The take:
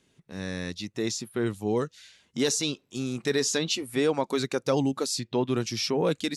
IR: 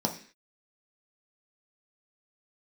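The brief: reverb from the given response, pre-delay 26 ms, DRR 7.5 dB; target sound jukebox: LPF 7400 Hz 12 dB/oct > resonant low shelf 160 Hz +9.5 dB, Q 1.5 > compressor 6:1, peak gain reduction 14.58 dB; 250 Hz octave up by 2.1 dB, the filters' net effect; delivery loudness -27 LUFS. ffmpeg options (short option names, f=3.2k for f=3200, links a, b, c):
-filter_complex "[0:a]equalizer=f=250:t=o:g=4.5,asplit=2[a][b];[1:a]atrim=start_sample=2205,adelay=26[c];[b][c]afir=irnorm=-1:irlink=0,volume=-15dB[d];[a][d]amix=inputs=2:normalize=0,lowpass=7.4k,lowshelf=f=160:t=q:w=1.5:g=9.5,acompressor=threshold=-29dB:ratio=6,volume=6.5dB"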